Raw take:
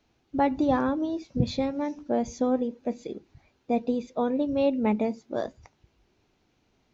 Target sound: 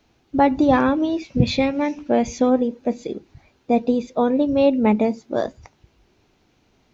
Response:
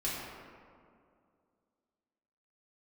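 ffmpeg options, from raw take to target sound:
-filter_complex "[0:a]asettb=1/sr,asplit=3[link_01][link_02][link_03];[link_01]atrim=end=0.734[link_04];[link_02]atrim=start=0.73:end=2.5,asetpts=PTS-STARTPTS,afade=type=in:duration=0.004:curve=qsin,afade=type=out:start_time=1.766:duration=0.004:curve=qsin,equalizer=frequency=2500:width_type=o:width=0.75:gain=10.5[link_05];[link_03]atrim=start=2.496[link_06];[link_04][link_05]acrossfade=duration=0.004:curve1=hsin:curve2=qsin[link_07];[link_07][link_06]acrossfade=duration=0.004:curve1=qsin:curve2=hsin,volume=7.5dB"

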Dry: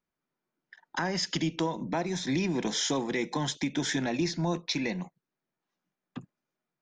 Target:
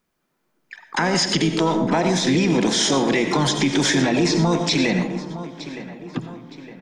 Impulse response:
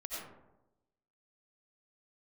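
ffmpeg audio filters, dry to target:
-filter_complex "[0:a]asplit=2[link_01][link_02];[link_02]adelay=913,lowpass=frequency=3300:poles=1,volume=-16.5dB,asplit=2[link_03][link_04];[link_04]adelay=913,lowpass=frequency=3300:poles=1,volume=0.49,asplit=2[link_05][link_06];[link_06]adelay=913,lowpass=frequency=3300:poles=1,volume=0.49,asplit=2[link_07][link_08];[link_08]adelay=913,lowpass=frequency=3300:poles=1,volume=0.49[link_09];[link_01][link_03][link_05][link_07][link_09]amix=inputs=5:normalize=0,acrossover=split=8000[link_10][link_11];[link_11]acompressor=threshold=-57dB:ratio=4:attack=1:release=60[link_12];[link_10][link_12]amix=inputs=2:normalize=0,asplit=2[link_13][link_14];[1:a]atrim=start_sample=2205,highshelf=frequency=7700:gain=6.5[link_15];[link_14][link_15]afir=irnorm=-1:irlink=0,volume=-6dB[link_16];[link_13][link_16]amix=inputs=2:normalize=0,asplit=2[link_17][link_18];[link_18]asetrate=58866,aresample=44100,atempo=0.749154,volume=-10dB[link_19];[link_17][link_19]amix=inputs=2:normalize=0,alimiter=level_in=20dB:limit=-1dB:release=50:level=0:latency=1,volume=-9dB"

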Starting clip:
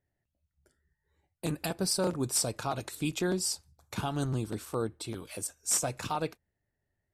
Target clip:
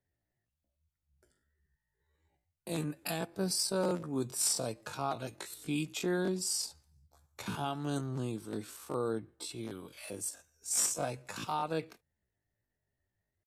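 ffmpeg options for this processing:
ffmpeg -i in.wav -filter_complex "[0:a]acrossover=split=120|4000[link_01][link_02][link_03];[link_01]acompressor=threshold=-58dB:ratio=20[link_04];[link_04][link_02][link_03]amix=inputs=3:normalize=0,atempo=0.53,volume=-2.5dB" out.wav

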